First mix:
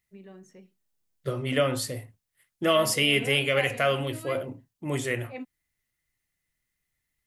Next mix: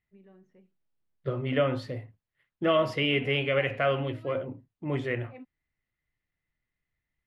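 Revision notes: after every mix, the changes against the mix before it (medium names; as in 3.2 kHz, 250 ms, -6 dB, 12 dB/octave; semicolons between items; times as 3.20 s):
first voice -7.5 dB; master: add distance through air 330 m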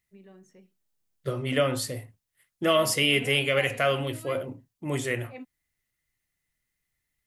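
first voice +3.5 dB; master: remove distance through air 330 m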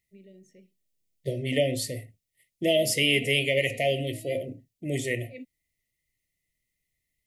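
master: add brick-wall FIR band-stop 720–1800 Hz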